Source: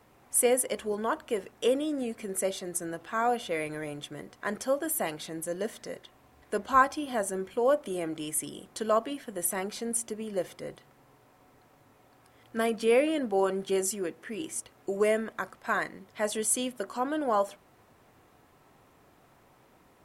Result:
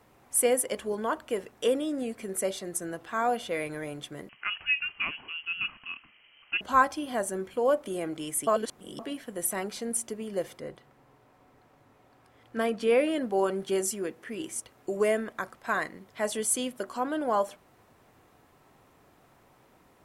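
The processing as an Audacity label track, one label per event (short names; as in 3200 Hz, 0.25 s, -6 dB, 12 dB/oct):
4.290000	6.610000	inverted band carrier 3100 Hz
8.470000	8.990000	reverse
10.580000	12.990000	high shelf 4300 Hz -> 7500 Hz -8.5 dB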